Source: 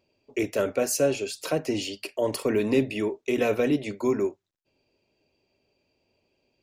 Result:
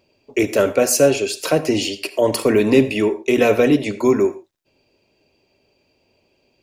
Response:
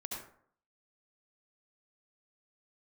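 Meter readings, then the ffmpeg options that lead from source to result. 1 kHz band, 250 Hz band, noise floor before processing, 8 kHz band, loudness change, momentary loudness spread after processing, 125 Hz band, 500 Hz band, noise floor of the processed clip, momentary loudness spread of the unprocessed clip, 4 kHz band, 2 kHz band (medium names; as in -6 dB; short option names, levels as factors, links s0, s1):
+9.5 dB, +9.0 dB, -76 dBFS, +9.5 dB, +9.0 dB, 7 LU, +8.5 dB, +9.0 dB, -65 dBFS, 7 LU, +9.5 dB, +9.5 dB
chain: -filter_complex "[0:a]asplit=2[s0][s1];[1:a]atrim=start_sample=2205,afade=t=out:st=0.19:d=0.01,atrim=end_sample=8820,lowshelf=f=200:g=-11.5[s2];[s1][s2]afir=irnorm=-1:irlink=0,volume=0.316[s3];[s0][s3]amix=inputs=2:normalize=0,volume=2.51"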